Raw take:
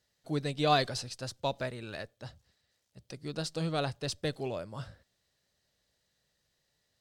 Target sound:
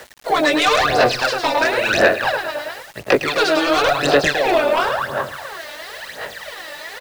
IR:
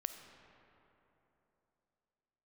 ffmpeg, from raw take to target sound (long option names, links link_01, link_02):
-filter_complex "[0:a]equalizer=frequency=1400:width=0.3:gain=9,acrossover=split=360|5500[link_01][link_02][link_03];[link_01]acompressor=threshold=-40dB:ratio=4[link_04];[link_02]acompressor=threshold=-37dB:ratio=4[link_05];[link_03]acompressor=threshold=-54dB:ratio=4[link_06];[link_04][link_05][link_06]amix=inputs=3:normalize=0,aecho=1:1:108|216|324|432|540|648|756:0.501|0.271|0.146|0.0789|0.0426|0.023|0.0124,flanger=delay=18.5:depth=4.4:speed=0.31,afftfilt=real='re*lt(hypot(re,im),0.0794)':imag='im*lt(hypot(re,im),0.0794)':win_size=1024:overlap=0.75,acrossover=split=350|2900[link_07][link_08][link_09];[link_08]aeval=exprs='0.0708*sin(PI/2*5.62*val(0)/0.0708)':channel_layout=same[link_10];[link_07][link_10][link_09]amix=inputs=3:normalize=0,aresample=32000,aresample=44100,areverse,acompressor=mode=upward:threshold=-31dB:ratio=2.5,areverse,aphaser=in_gain=1:out_gain=1:delay=3.4:decay=0.72:speed=0.96:type=sinusoidal,highshelf=frequency=4600:gain=8,acrusher=bits=7:mix=0:aa=0.000001,volume=7.5dB"